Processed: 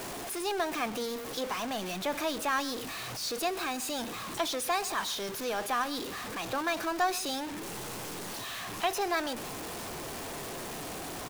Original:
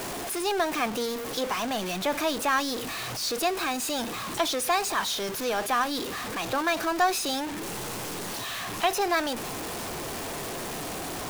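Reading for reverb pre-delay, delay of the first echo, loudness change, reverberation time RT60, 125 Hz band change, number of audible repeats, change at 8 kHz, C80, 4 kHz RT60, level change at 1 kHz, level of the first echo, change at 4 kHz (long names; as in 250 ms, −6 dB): no reverb audible, 129 ms, −5.0 dB, no reverb audible, −5.0 dB, 1, −5.0 dB, no reverb audible, no reverb audible, −5.0 dB, −18.5 dB, −5.0 dB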